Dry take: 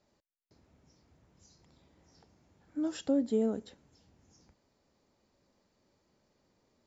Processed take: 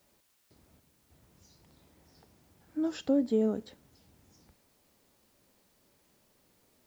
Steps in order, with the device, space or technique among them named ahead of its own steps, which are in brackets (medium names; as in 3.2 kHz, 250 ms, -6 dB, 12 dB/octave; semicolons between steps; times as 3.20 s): worn cassette (low-pass 6.1 kHz; wow and flutter; level dips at 0.80 s, 297 ms -7 dB; white noise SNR 34 dB); trim +2 dB